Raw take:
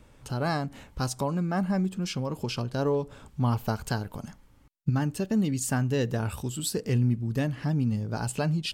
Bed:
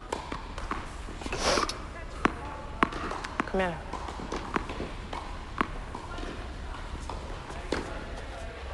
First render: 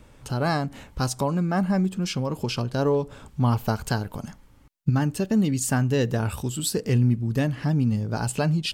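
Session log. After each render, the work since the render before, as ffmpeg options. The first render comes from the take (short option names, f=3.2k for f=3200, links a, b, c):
-af "volume=4dB"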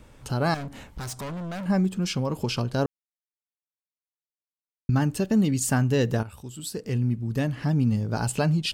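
-filter_complex "[0:a]asettb=1/sr,asplit=3[a][b][c];[a]atrim=end=0.544[d];[b]atrim=start=0.54:end=1.66,asetpts=PTS-STARTPTS,afade=t=in:d=0.004:c=qsin,afade=t=out:st=1.116:d=0.004:c=qsin,volume=32dB,asoftclip=hard,volume=-32dB[e];[c]atrim=start=1.656[f];[d][e]acrossfade=d=0.004:c1=hsin:c2=qsin[g];[g][f]acrossfade=d=0.004:c1=qsin:c2=hsin,asplit=4[h][i][j][k];[h]atrim=end=2.86,asetpts=PTS-STARTPTS,afade=t=out:st=2.856:d=0.004:c=hsin[l];[i]atrim=start=2.86:end=4.89,asetpts=PTS-STARTPTS,volume=0[m];[j]atrim=start=4.89:end=6.23,asetpts=PTS-STARTPTS,afade=t=in:d=0.004:c=hsin,afade=t=out:st=1.336:d=0.004:c=hsin:silence=0.16788[n];[k]atrim=start=6.23,asetpts=PTS-STARTPTS,afade=t=in:d=1.65:silence=0.16788[o];[l][m][n][o]concat=n=4:v=0:a=1"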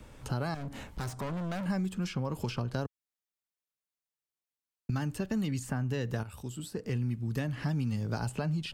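-filter_complex "[0:a]alimiter=limit=-14.5dB:level=0:latency=1:release=306,acrossover=split=120|1000|2100[a][b][c][d];[a]acompressor=threshold=-37dB:ratio=4[e];[b]acompressor=threshold=-34dB:ratio=4[f];[c]acompressor=threshold=-44dB:ratio=4[g];[d]acompressor=threshold=-48dB:ratio=4[h];[e][f][g][h]amix=inputs=4:normalize=0"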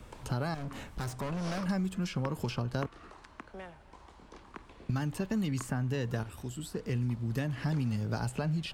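-filter_complex "[1:a]volume=-17.5dB[a];[0:a][a]amix=inputs=2:normalize=0"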